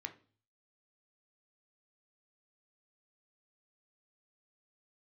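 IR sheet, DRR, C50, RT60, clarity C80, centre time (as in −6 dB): 6.5 dB, 14.5 dB, 0.40 s, 20.5 dB, 6 ms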